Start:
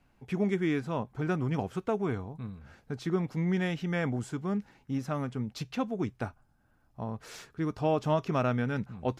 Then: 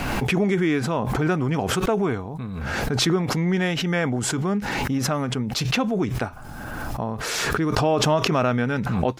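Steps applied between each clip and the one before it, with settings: low shelf 200 Hz -6 dB; in parallel at -2 dB: limiter -24.5 dBFS, peak gain reduction 7.5 dB; on the sum: backwards sustainer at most 21 dB/s; gain +4.5 dB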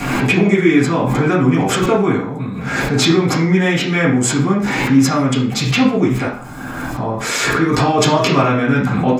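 reverb RT60 0.50 s, pre-delay 3 ms, DRR -8.5 dB; gain +1 dB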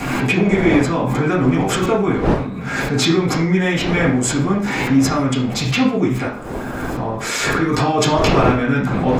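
wind noise 530 Hz -23 dBFS; gain -2.5 dB

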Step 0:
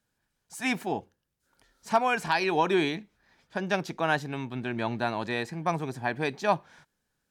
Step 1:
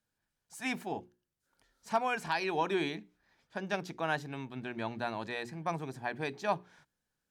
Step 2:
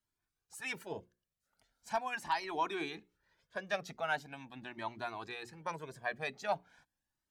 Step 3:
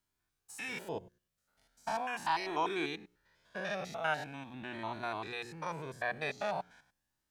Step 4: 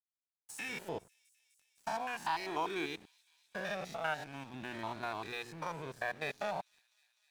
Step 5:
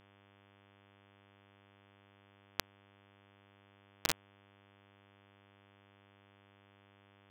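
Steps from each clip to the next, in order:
notches 60/120/180/240/300/360/420 Hz; gain -6.5 dB
harmonic-percussive split harmonic -10 dB; cascading flanger rising 0.41 Hz; gain +3.5 dB
stepped spectrum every 0.1 s; gain +5.5 dB
compressor 1.5:1, threshold -57 dBFS, peak gain reduction 10.5 dB; crossover distortion -59.5 dBFS; thin delay 0.252 s, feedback 83%, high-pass 4800 Hz, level -20 dB; gain +8 dB
bit-crush 4-bit; buzz 100 Hz, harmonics 35, -71 dBFS -3 dB/oct; gain +6.5 dB

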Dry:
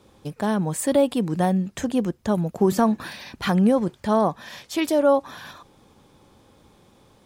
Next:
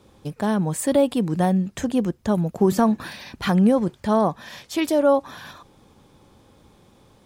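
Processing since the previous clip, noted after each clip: low shelf 210 Hz +3 dB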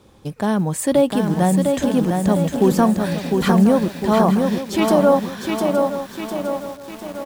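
feedback echo 0.866 s, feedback 23%, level -12 dB; companded quantiser 8-bit; lo-fi delay 0.704 s, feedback 55%, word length 7-bit, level -4 dB; gain +2.5 dB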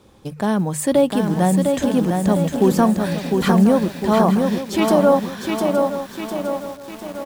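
notches 50/100/150 Hz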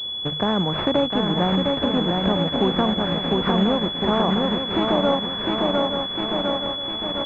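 spectral contrast lowered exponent 0.66; compressor 2.5:1, threshold -23 dBFS, peak gain reduction 9.5 dB; pulse-width modulation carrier 3400 Hz; gain +3 dB

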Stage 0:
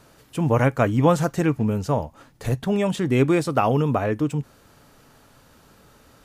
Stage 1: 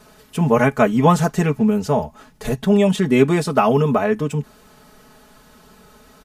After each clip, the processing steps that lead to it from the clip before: comb 4.7 ms, depth 95%; gain +2 dB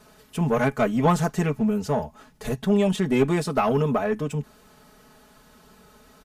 one diode to ground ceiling -9 dBFS; gain -4.5 dB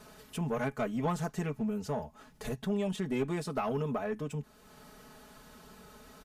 compressor 1.5:1, threshold -50 dBFS, peak gain reduction 12.5 dB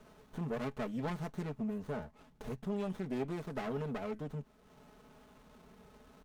running maximum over 17 samples; gain -4 dB

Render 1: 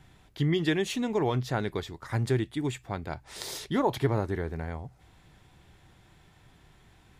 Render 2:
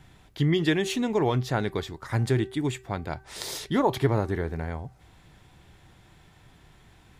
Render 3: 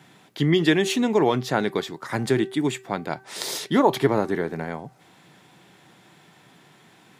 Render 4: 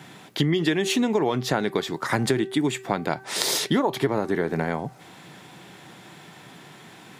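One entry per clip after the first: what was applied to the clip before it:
de-hum 385.5 Hz, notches 5; gain +3 dB
HPF 160 Hz 24 dB/oct; gain +5 dB
compressor 6:1, threshold -27 dBFS, peak gain reduction 14 dB; gain +7.5 dB

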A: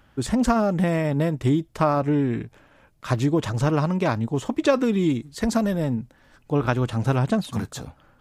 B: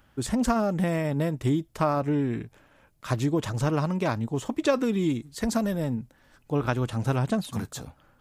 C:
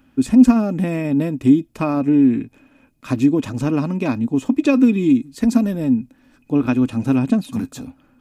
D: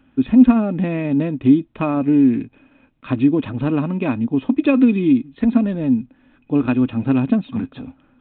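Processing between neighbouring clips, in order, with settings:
high shelf 8400 Hz +7.5 dB; gain -4 dB
small resonant body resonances 260/2500 Hz, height 18 dB, ringing for 60 ms
G.726 40 kbps 8000 Hz

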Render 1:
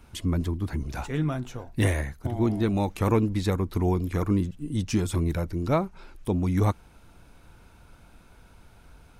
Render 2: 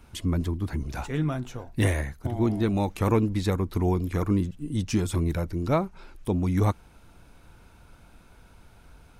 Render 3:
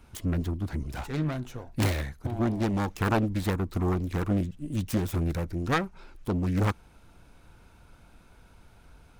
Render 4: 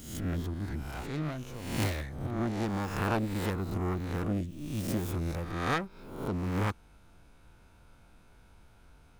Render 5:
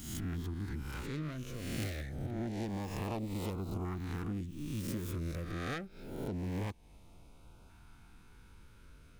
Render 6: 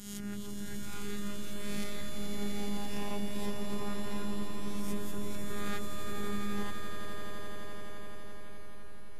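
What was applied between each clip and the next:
nothing audible
self-modulated delay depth 0.63 ms; gain -2 dB
spectral swells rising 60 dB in 0.81 s; gain -6 dB
compressor 2.5:1, threshold -38 dBFS, peak gain reduction 9.5 dB; LFO notch saw up 0.26 Hz 500–1900 Hz; gain +1 dB
robotiser 204 Hz; swelling echo 85 ms, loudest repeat 8, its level -7 dB; gain +2 dB; WMA 128 kbps 32000 Hz

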